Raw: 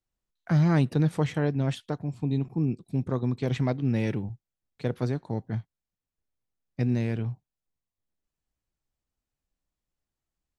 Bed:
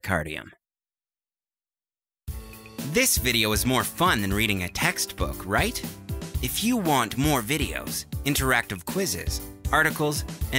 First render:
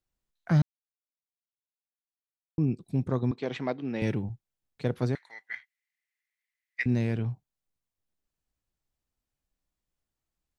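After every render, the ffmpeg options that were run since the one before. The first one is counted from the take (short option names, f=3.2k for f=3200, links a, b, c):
-filter_complex "[0:a]asettb=1/sr,asplit=3[a][b][c];[a]atrim=end=3.314[d];[b]atrim=start=3.31:end=4.02,asetpts=PTS-STARTPTS,afade=t=in:d=0.004:c=qsin,afade=t=out:st=0.706:d=0.004:c=qsin,highpass=310,lowpass=4.7k[e];[c]atrim=start=4.016[f];[d][e]acrossfade=d=0.004:c1=hsin:c2=qsin[g];[g][f]acrossfade=d=0.004:c1=qsin:c2=hsin,asettb=1/sr,asplit=3[h][i][j];[h]atrim=end=5.154[k];[i]atrim=start=5.15:end=6.86,asetpts=PTS-STARTPTS,afade=t=in:d=0.004:c=qsin,afade=t=out:st=1.706:d=0.004:c=qsin,highpass=f=2k:t=q:w=13[l];[j]atrim=start=6.856[m];[k][l]acrossfade=d=0.004:c1=hsin:c2=qsin[n];[n][m]acrossfade=d=0.004:c1=qsin:c2=hsin,asplit=3[o][p][q];[o]atrim=end=0.62,asetpts=PTS-STARTPTS,afade=t=out:st=0.616:d=0.004:c=hsin[r];[p]atrim=start=0.62:end=2.58,asetpts=PTS-STARTPTS,volume=0[s];[q]atrim=start=2.58,asetpts=PTS-STARTPTS,afade=t=in:d=0.004:c=hsin[t];[r][s][t]concat=n=3:v=0:a=1"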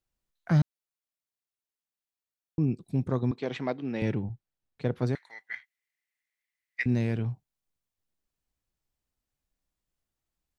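-filter_complex "[0:a]asettb=1/sr,asplit=3[a][b][c];[a]atrim=end=4.024[d];[b]atrim=start=4.02:end=5.07,asetpts=PTS-STARTPTS,afade=t=in:d=0.004:c=qsin,afade=t=out:st=1.046:d=0.004:c=qsin,lowpass=f=3.3k:p=1[e];[c]atrim=start=5.066[f];[d][e]acrossfade=d=0.004:c1=hsin:c2=qsin[g];[g][f]acrossfade=d=0.004:c1=qsin:c2=hsin"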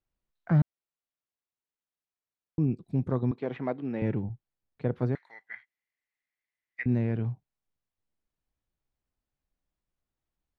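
-filter_complex "[0:a]acrossover=split=2600[a][b];[b]acompressor=threshold=-58dB:ratio=4:attack=1:release=60[c];[a][c]amix=inputs=2:normalize=0,aemphasis=mode=reproduction:type=75kf"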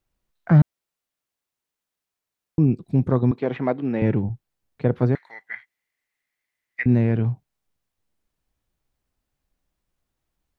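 -af "volume=8.5dB"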